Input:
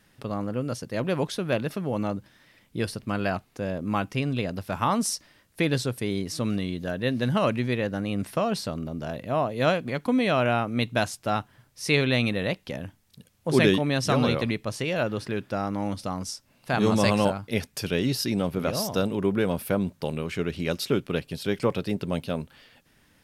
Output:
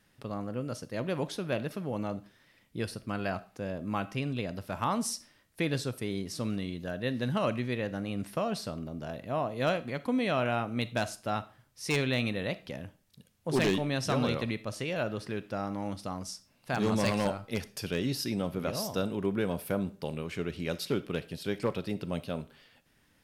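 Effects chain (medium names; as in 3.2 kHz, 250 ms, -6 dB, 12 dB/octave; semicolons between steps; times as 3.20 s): wavefolder -13 dBFS; on a send: reverberation RT60 0.40 s, pre-delay 4 ms, DRR 14.5 dB; on the sum: trim -6 dB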